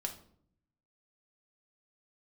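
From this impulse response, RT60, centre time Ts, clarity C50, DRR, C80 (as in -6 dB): 0.60 s, 11 ms, 11.0 dB, 3.0 dB, 15.5 dB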